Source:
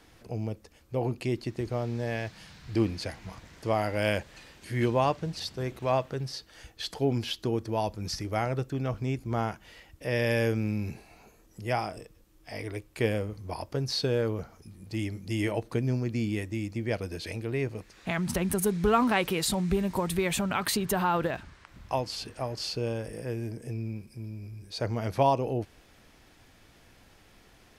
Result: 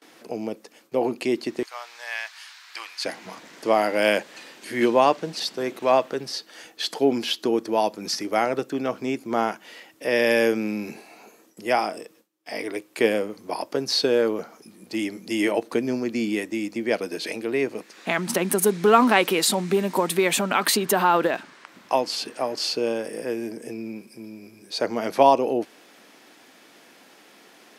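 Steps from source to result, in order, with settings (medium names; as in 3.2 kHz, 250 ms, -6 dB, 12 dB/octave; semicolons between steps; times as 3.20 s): gate with hold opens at -49 dBFS; high-pass 230 Hz 24 dB/octave, from 1.63 s 1 kHz, from 3.05 s 230 Hz; trim +8 dB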